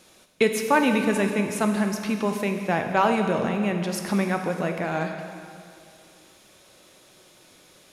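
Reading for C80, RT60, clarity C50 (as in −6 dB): 6.5 dB, 2.4 s, 5.5 dB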